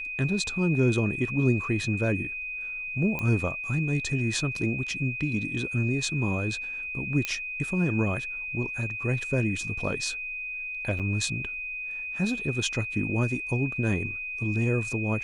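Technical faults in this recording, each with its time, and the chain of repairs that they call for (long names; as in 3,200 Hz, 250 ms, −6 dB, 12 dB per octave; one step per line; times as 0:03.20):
whistle 2,500 Hz −32 dBFS
0:03.19: click −17 dBFS
0:07.25: click −13 dBFS
0:10.99–0:11.00: drop-out 7.4 ms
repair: click removal
notch filter 2,500 Hz, Q 30
repair the gap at 0:10.99, 7.4 ms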